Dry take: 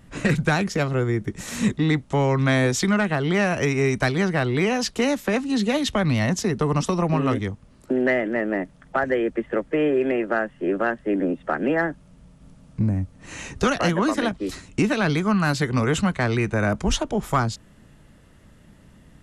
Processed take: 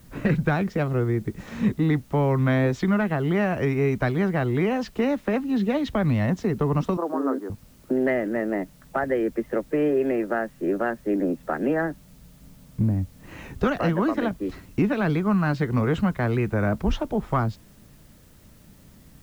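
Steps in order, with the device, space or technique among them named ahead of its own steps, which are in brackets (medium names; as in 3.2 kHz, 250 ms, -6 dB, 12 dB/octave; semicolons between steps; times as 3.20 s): 6.97–7.50 s: Chebyshev band-pass 260–1600 Hz, order 4; cassette deck with a dirty head (tape spacing loss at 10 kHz 31 dB; wow and flutter; white noise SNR 35 dB)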